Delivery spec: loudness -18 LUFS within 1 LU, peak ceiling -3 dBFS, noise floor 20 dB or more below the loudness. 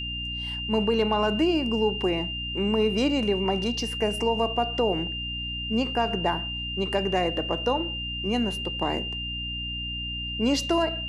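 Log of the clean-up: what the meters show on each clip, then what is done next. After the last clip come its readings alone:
hum 60 Hz; highest harmonic 300 Hz; hum level -34 dBFS; steady tone 2.8 kHz; tone level -31 dBFS; loudness -26.0 LUFS; peak level -12.0 dBFS; loudness target -18.0 LUFS
-> de-hum 60 Hz, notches 5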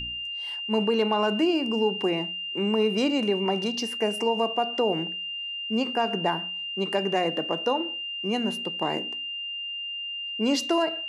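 hum not found; steady tone 2.8 kHz; tone level -31 dBFS
-> band-stop 2.8 kHz, Q 30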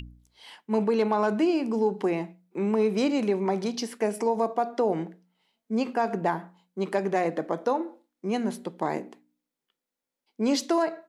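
steady tone not found; loudness -27.5 LUFS; peak level -13.0 dBFS; loudness target -18.0 LUFS
-> trim +9.5 dB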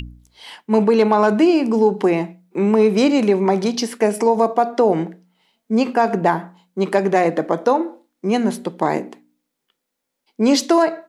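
loudness -18.0 LUFS; peak level -3.5 dBFS; noise floor -78 dBFS

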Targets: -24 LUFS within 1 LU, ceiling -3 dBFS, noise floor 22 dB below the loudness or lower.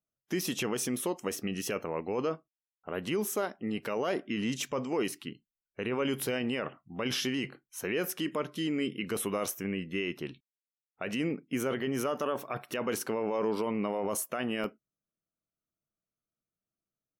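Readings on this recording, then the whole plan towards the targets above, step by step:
dropouts 1; longest dropout 1.7 ms; loudness -33.5 LUFS; peak level -21.5 dBFS; loudness target -24.0 LUFS
-> interpolate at 14.64 s, 1.7 ms; trim +9.5 dB

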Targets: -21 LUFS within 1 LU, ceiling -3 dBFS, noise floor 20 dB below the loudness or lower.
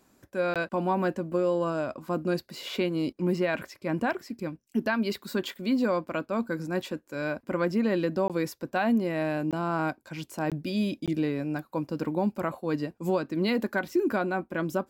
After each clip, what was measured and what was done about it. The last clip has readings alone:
dropouts 5; longest dropout 17 ms; loudness -29.5 LUFS; peak level -16.0 dBFS; loudness target -21.0 LUFS
-> interpolate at 0.54/8.28/9.51/10.50/11.06 s, 17 ms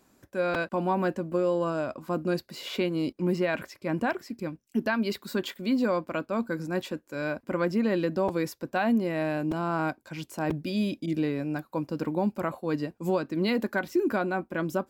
dropouts 0; loudness -29.5 LUFS; peak level -16.0 dBFS; loudness target -21.0 LUFS
-> trim +8.5 dB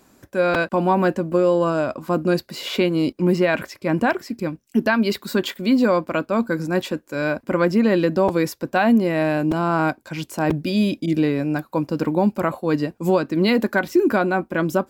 loudness -21.0 LUFS; peak level -7.5 dBFS; noise floor -58 dBFS

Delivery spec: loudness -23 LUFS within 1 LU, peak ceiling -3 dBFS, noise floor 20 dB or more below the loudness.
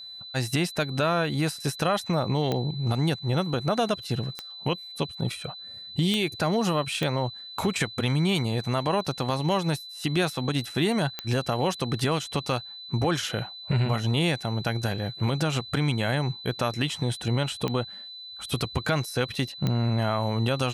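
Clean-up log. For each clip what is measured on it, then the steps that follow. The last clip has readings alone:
clicks found 7; steady tone 4 kHz; tone level -39 dBFS; loudness -27.0 LUFS; peak level -11.5 dBFS; loudness target -23.0 LUFS
-> de-click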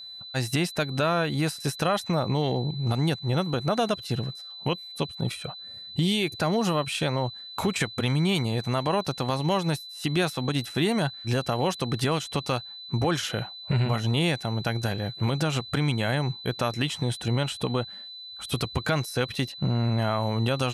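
clicks found 0; steady tone 4 kHz; tone level -39 dBFS
-> band-stop 4 kHz, Q 30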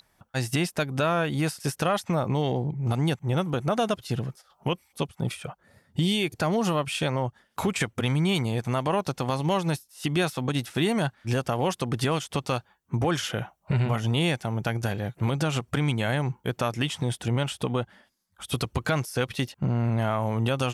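steady tone not found; loudness -27.5 LUFS; peak level -13.0 dBFS; loudness target -23.0 LUFS
-> trim +4.5 dB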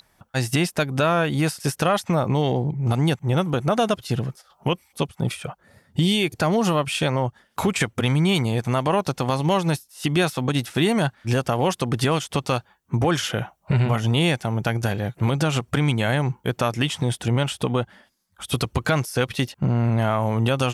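loudness -23.0 LUFS; peak level -8.5 dBFS; noise floor -64 dBFS

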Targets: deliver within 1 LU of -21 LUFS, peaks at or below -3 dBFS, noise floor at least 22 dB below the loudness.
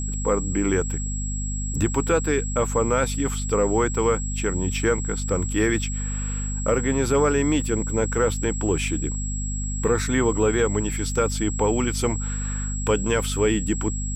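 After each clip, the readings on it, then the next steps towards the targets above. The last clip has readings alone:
hum 50 Hz; highest harmonic 250 Hz; hum level -25 dBFS; steady tone 7.7 kHz; tone level -32 dBFS; loudness -23.5 LUFS; peak level -9.0 dBFS; loudness target -21.0 LUFS
-> hum notches 50/100/150/200/250 Hz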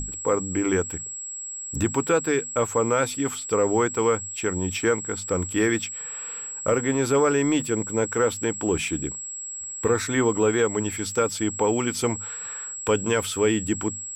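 hum not found; steady tone 7.7 kHz; tone level -32 dBFS
-> band-stop 7.7 kHz, Q 30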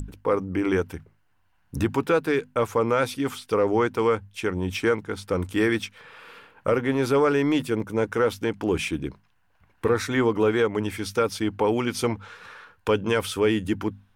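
steady tone not found; loudness -24.5 LUFS; peak level -10.5 dBFS; loudness target -21.0 LUFS
-> trim +3.5 dB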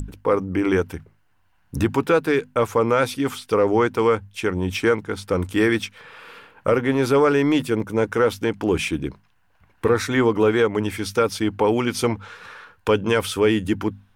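loudness -21.0 LUFS; peak level -7.0 dBFS; noise floor -61 dBFS

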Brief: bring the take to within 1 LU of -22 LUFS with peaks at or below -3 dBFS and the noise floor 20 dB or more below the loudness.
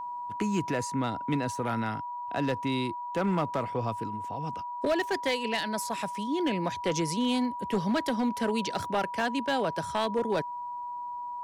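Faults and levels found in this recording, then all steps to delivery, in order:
clipped samples 0.8%; clipping level -21.0 dBFS; steady tone 970 Hz; tone level -34 dBFS; loudness -30.5 LUFS; peak level -21.0 dBFS; loudness target -22.0 LUFS
-> clip repair -21 dBFS; band-stop 970 Hz, Q 30; trim +8.5 dB

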